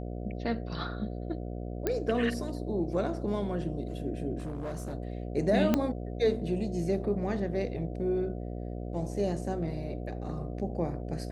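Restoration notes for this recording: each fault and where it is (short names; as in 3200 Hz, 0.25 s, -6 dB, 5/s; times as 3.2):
buzz 60 Hz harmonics 12 -37 dBFS
1.87 pop -15 dBFS
4.38–4.95 clipped -32 dBFS
5.74 pop -12 dBFS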